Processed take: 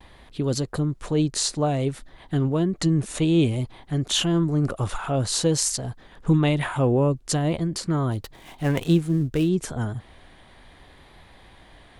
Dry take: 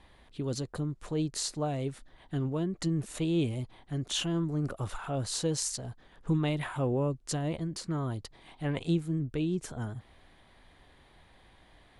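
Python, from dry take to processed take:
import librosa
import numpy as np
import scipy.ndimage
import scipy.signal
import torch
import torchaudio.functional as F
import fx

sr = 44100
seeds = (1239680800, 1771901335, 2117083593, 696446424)

y = fx.dead_time(x, sr, dead_ms=0.069, at=(8.12, 9.49))
y = fx.vibrato(y, sr, rate_hz=0.56, depth_cents=29.0)
y = F.gain(torch.from_numpy(y), 9.0).numpy()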